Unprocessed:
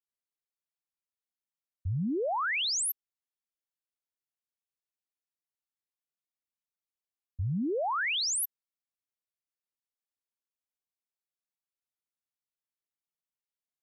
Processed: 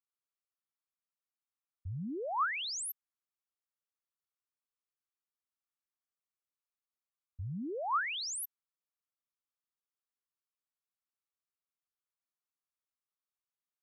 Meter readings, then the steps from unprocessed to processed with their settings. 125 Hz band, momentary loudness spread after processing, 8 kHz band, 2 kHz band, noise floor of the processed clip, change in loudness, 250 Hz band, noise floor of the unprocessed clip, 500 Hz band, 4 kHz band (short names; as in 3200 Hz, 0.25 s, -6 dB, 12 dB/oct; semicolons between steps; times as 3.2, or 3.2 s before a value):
-8.5 dB, 12 LU, -8.5 dB, -5.5 dB, under -85 dBFS, -6.0 dB, -8.5 dB, under -85 dBFS, -7.5 dB, -8.0 dB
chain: bell 1200 Hz +11 dB 0.63 oct; gain -8.5 dB